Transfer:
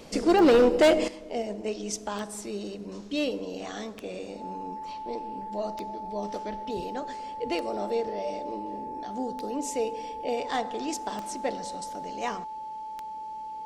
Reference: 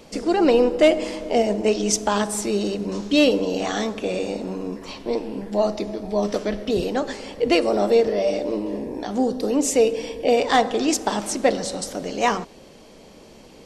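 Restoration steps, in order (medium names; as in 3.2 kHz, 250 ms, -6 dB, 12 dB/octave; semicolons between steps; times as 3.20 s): clip repair -14.5 dBFS; de-click; band-stop 870 Hz, Q 30; gain correction +12 dB, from 1.08 s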